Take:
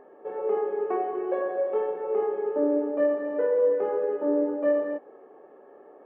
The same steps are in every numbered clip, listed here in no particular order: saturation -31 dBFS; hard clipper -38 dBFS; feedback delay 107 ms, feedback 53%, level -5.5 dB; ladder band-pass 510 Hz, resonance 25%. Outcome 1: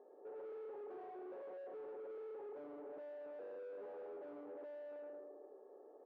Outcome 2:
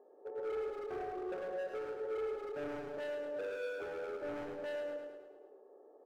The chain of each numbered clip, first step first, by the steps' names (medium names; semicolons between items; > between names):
feedback delay > hard clipper > ladder band-pass > saturation; ladder band-pass > hard clipper > feedback delay > saturation